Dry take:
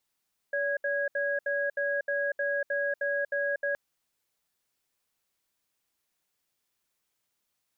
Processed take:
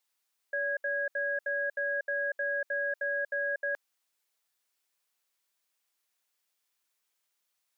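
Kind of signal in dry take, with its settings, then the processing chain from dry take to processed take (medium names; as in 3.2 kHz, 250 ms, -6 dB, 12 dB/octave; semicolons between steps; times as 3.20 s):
cadence 570 Hz, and 1.65 kHz, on 0.24 s, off 0.07 s, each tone -29 dBFS 3.22 s
high-pass 730 Hz 6 dB/octave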